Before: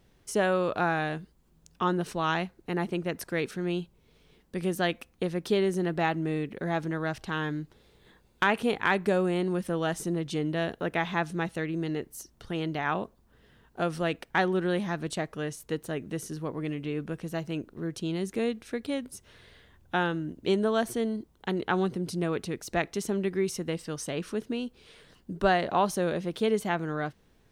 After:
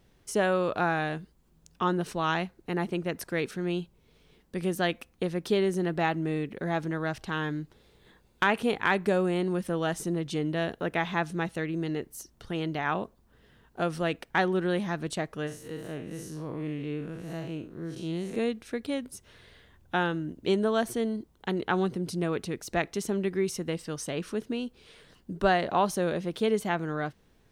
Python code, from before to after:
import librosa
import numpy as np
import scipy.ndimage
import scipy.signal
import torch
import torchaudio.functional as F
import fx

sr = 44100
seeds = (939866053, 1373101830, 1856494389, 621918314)

y = fx.spec_blur(x, sr, span_ms=129.0, at=(15.46, 18.35), fade=0.02)